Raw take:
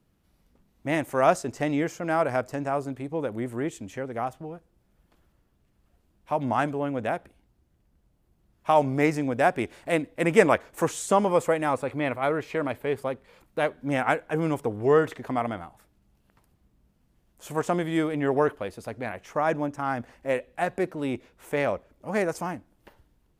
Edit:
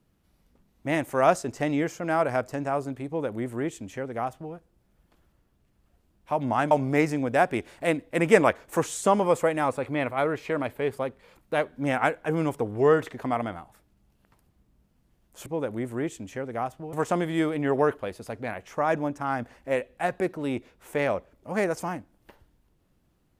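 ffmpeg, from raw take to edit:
ffmpeg -i in.wav -filter_complex "[0:a]asplit=4[link_01][link_02][link_03][link_04];[link_01]atrim=end=6.712[link_05];[link_02]atrim=start=8.758:end=17.512[link_06];[link_03]atrim=start=3.068:end=4.542[link_07];[link_04]atrim=start=17.508[link_08];[link_05][link_06]acrossfade=duration=0.004:curve1=hsin:curve2=hsin[link_09];[link_09][link_07]acrossfade=duration=0.004:curve1=hsin:curve2=hsin[link_10];[link_10][link_08]acrossfade=duration=0.004:curve1=hsin:curve2=hsin" out.wav

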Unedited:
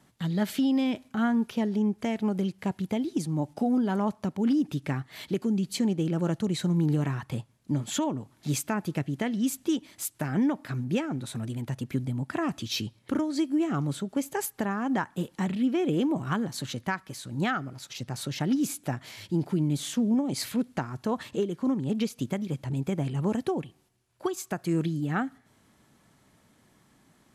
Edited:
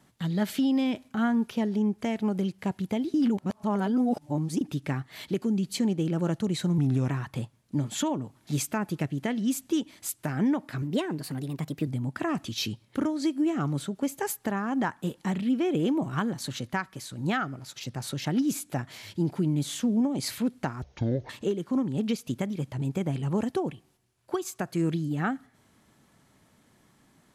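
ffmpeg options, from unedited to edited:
ffmpeg -i in.wav -filter_complex "[0:a]asplit=9[link_01][link_02][link_03][link_04][link_05][link_06][link_07][link_08][link_09];[link_01]atrim=end=3.142[link_10];[link_02]atrim=start=3.138:end=4.612,asetpts=PTS-STARTPTS,areverse[link_11];[link_03]atrim=start=4.608:end=6.784[link_12];[link_04]atrim=start=6.78:end=7.05,asetpts=PTS-STARTPTS,asetrate=38367,aresample=44100,atrim=end_sample=13686,asetpts=PTS-STARTPTS[link_13];[link_05]atrim=start=7.046:end=10.784[link_14];[link_06]atrim=start=10.78:end=12.01,asetpts=PTS-STARTPTS,asetrate=51597,aresample=44100[link_15];[link_07]atrim=start=12.006:end=20.964[link_16];[link_08]atrim=start=20.96:end=21.21,asetpts=PTS-STARTPTS,asetrate=23373,aresample=44100[link_17];[link_09]atrim=start=21.206[link_18];[link_10][link_11]acrossfade=duration=0.004:curve1=hsin:curve2=hsin[link_19];[link_19][link_12]acrossfade=duration=0.004:curve1=hsin:curve2=hsin[link_20];[link_20][link_13]acrossfade=duration=0.004:curve1=hsin:curve2=hsin[link_21];[link_21][link_14]acrossfade=duration=0.004:curve1=hsin:curve2=hsin[link_22];[link_22][link_15]acrossfade=duration=0.004:curve1=hsin:curve2=hsin[link_23];[link_23][link_16]acrossfade=duration=0.004:curve1=hsin:curve2=hsin[link_24];[link_24][link_17]acrossfade=duration=0.004:curve1=hsin:curve2=hsin[link_25];[link_25][link_18]acrossfade=duration=0.004:curve1=hsin:curve2=hsin" out.wav

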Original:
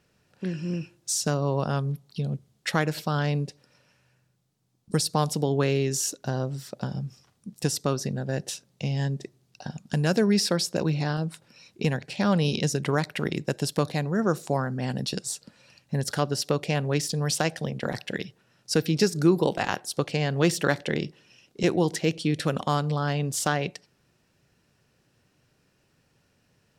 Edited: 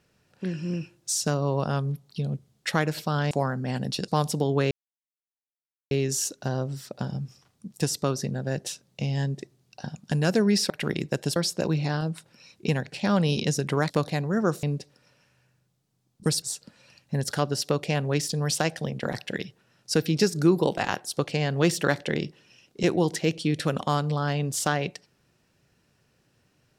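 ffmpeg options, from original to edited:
ffmpeg -i in.wav -filter_complex "[0:a]asplit=9[link_01][link_02][link_03][link_04][link_05][link_06][link_07][link_08][link_09];[link_01]atrim=end=3.312[link_10];[link_02]atrim=start=14.448:end=15.222[link_11];[link_03]atrim=start=5.098:end=5.73,asetpts=PTS-STARTPTS,afade=type=out:start_time=0.628:duration=0.004:curve=hsin,apad=pad_dur=1.2[link_12];[link_04]atrim=start=5.73:end=10.522,asetpts=PTS-STARTPTS,afade=type=in:duration=0.004:curve=hsin[link_13];[link_05]atrim=start=13.058:end=13.722[link_14];[link_06]atrim=start=10.518:end=13.062[link_15];[link_07]atrim=start=13.718:end=14.452[link_16];[link_08]atrim=start=3.308:end=5.102[link_17];[link_09]atrim=start=15.218[link_18];[link_10][link_11]acrossfade=duration=0.004:curve1=hsin:curve2=hsin[link_19];[link_12][link_13]concat=n=2:v=0:a=1[link_20];[link_19][link_20]acrossfade=duration=0.004:curve1=hsin:curve2=hsin[link_21];[link_21][link_14]acrossfade=duration=0.004:curve1=hsin:curve2=hsin[link_22];[link_22][link_15]acrossfade=duration=0.004:curve1=hsin:curve2=hsin[link_23];[link_23][link_16]acrossfade=duration=0.004:curve1=hsin:curve2=hsin[link_24];[link_24][link_17]acrossfade=duration=0.004:curve1=hsin:curve2=hsin[link_25];[link_25][link_18]acrossfade=duration=0.004:curve1=hsin:curve2=hsin" out.wav

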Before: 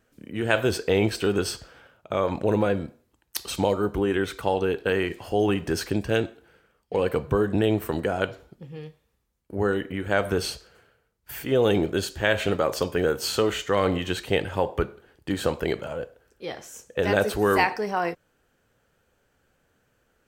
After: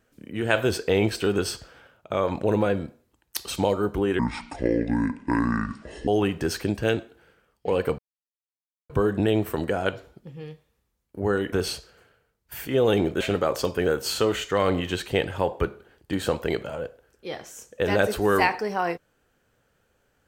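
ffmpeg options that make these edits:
ffmpeg -i in.wav -filter_complex "[0:a]asplit=6[link_01][link_02][link_03][link_04][link_05][link_06];[link_01]atrim=end=4.194[link_07];[link_02]atrim=start=4.19:end=5.34,asetpts=PTS-STARTPTS,asetrate=26901,aresample=44100,atrim=end_sample=83139,asetpts=PTS-STARTPTS[link_08];[link_03]atrim=start=5.336:end=7.25,asetpts=PTS-STARTPTS,afade=type=out:start_time=1.91:duration=0.004:curve=hsin,apad=pad_dur=0.91[link_09];[link_04]atrim=start=7.25:end=9.882,asetpts=PTS-STARTPTS,afade=type=in:duration=0.004:curve=hsin[link_10];[link_05]atrim=start=10.298:end=11.982[link_11];[link_06]atrim=start=12.378[link_12];[link_07][link_08]acrossfade=duration=0.004:curve1=hsin:curve2=hsin[link_13];[link_09][link_10]concat=n=2:v=0:a=1[link_14];[link_13][link_14]acrossfade=duration=0.004:curve1=hsin:curve2=hsin[link_15];[link_15][link_11]acrossfade=duration=0.004:curve1=hsin:curve2=hsin[link_16];[link_16][link_12]acrossfade=duration=0.004:curve1=hsin:curve2=hsin" out.wav

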